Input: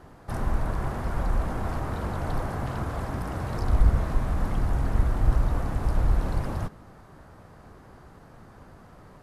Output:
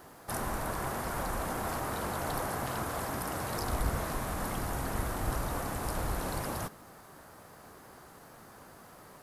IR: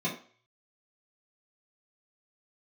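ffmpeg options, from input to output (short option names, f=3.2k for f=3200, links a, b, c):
-af "aemphasis=mode=production:type=bsi"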